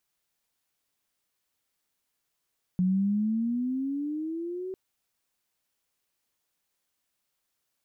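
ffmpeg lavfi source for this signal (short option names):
-f lavfi -i "aevalsrc='pow(10,(-21-11.5*t/1.95)/20)*sin(2*PI*180*1.95/(13*log(2)/12)*(exp(13*log(2)/12*t/1.95)-1))':d=1.95:s=44100"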